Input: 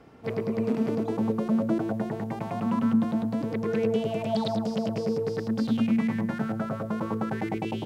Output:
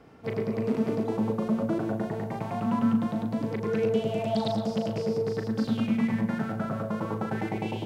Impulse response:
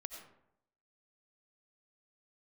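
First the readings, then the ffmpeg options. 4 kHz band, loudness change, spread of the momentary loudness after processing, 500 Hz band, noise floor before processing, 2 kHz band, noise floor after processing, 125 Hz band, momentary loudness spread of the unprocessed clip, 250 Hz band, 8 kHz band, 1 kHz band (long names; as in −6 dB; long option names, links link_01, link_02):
0.0 dB, −1.0 dB, 5 LU, 0.0 dB, −35 dBFS, 0.0 dB, −36 dBFS, +0.5 dB, 6 LU, −1.5 dB, can't be measured, 0.0 dB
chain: -filter_complex "[0:a]asplit=2[link_01][link_02];[1:a]atrim=start_sample=2205,adelay=38[link_03];[link_02][link_03]afir=irnorm=-1:irlink=0,volume=-2.5dB[link_04];[link_01][link_04]amix=inputs=2:normalize=0,volume=-1dB"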